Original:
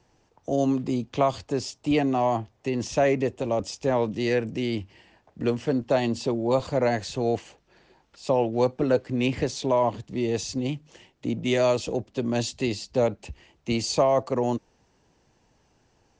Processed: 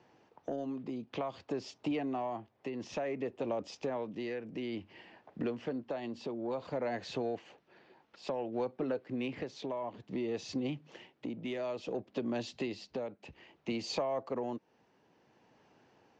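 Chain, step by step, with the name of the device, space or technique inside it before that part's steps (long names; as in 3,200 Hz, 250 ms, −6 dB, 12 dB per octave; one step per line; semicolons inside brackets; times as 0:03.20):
AM radio (band-pass filter 180–3,300 Hz; downward compressor 5 to 1, threshold −34 dBFS, peak gain reduction 16 dB; soft clipping −23.5 dBFS, distortion −26 dB; amplitude tremolo 0.57 Hz, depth 40%)
level +2 dB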